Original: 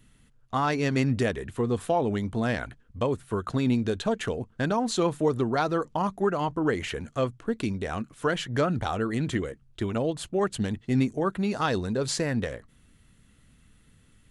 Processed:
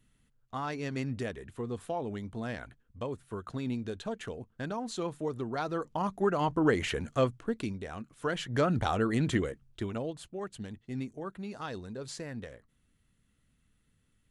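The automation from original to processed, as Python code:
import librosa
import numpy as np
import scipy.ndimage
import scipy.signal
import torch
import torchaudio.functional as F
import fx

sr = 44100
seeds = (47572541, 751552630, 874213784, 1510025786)

y = fx.gain(x, sr, db=fx.line((5.39, -10.0), (6.58, 0.0), (7.22, 0.0), (7.94, -10.0), (8.79, -0.5), (9.45, -0.5), (10.37, -13.0)))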